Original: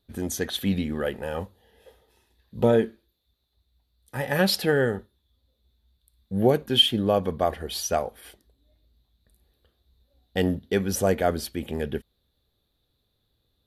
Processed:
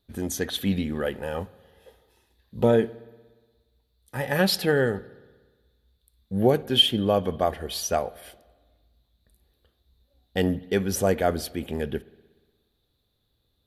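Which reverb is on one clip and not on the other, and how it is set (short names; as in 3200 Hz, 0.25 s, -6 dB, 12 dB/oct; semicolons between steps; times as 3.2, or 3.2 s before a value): spring tank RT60 1.4 s, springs 59 ms, chirp 35 ms, DRR 20 dB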